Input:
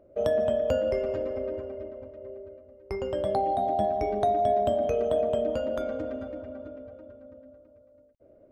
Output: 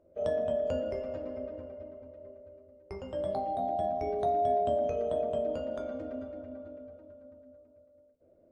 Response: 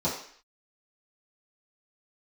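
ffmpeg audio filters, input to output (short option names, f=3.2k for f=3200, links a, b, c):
-filter_complex "[0:a]asplit=2[a][b];[1:a]atrim=start_sample=2205,afade=t=out:st=0.2:d=0.01,atrim=end_sample=9261,adelay=11[c];[b][c]afir=irnorm=-1:irlink=0,volume=-15dB[d];[a][d]amix=inputs=2:normalize=0,volume=-8.5dB" -ar 22050 -c:a aac -b:a 64k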